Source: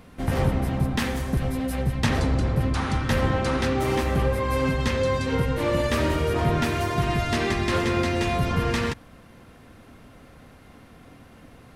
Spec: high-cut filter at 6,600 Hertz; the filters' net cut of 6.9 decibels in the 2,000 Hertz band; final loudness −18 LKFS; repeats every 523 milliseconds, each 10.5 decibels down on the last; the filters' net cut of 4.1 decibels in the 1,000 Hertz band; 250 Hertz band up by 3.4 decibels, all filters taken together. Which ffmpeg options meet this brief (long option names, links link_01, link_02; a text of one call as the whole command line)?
ffmpeg -i in.wav -af "lowpass=6600,equalizer=frequency=250:width_type=o:gain=4.5,equalizer=frequency=1000:width_type=o:gain=-4,equalizer=frequency=2000:width_type=o:gain=-7.5,aecho=1:1:523|1046|1569:0.299|0.0896|0.0269,volume=5.5dB" out.wav